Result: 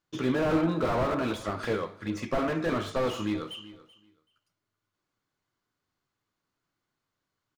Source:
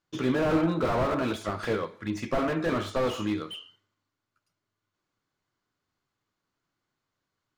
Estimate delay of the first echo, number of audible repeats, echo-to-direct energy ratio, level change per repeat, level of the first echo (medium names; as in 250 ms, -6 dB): 382 ms, 2, -18.5 dB, -15.5 dB, -18.5 dB